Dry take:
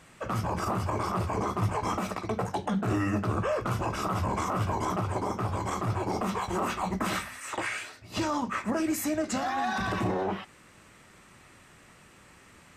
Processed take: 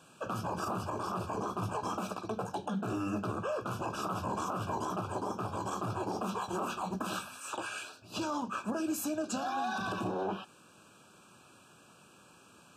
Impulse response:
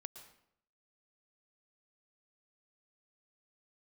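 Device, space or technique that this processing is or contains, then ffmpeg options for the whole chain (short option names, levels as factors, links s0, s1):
PA system with an anti-feedback notch: -af "highpass=140,asuperstop=centerf=2000:order=20:qfactor=3.1,alimiter=limit=0.0708:level=0:latency=1:release=225,volume=0.75"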